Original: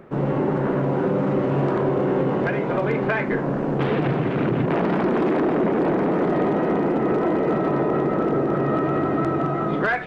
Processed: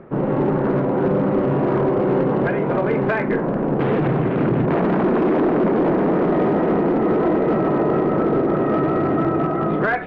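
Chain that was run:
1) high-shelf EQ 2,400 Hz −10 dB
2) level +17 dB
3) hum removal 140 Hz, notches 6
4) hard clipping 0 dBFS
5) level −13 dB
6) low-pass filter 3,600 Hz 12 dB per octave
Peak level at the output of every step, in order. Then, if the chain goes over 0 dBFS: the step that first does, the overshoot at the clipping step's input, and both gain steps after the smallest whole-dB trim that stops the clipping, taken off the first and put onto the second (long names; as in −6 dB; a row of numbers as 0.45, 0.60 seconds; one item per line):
−12.0, +5.0, +6.0, 0.0, −13.0, −12.5 dBFS
step 2, 6.0 dB
step 2 +11 dB, step 5 −7 dB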